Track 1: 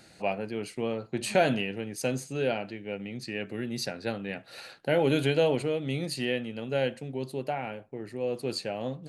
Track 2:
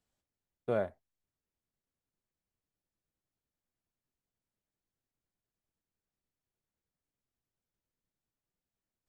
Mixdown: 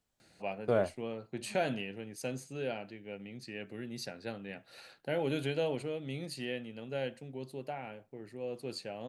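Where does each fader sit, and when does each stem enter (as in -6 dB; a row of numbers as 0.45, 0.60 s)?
-8.5, +2.5 dB; 0.20, 0.00 s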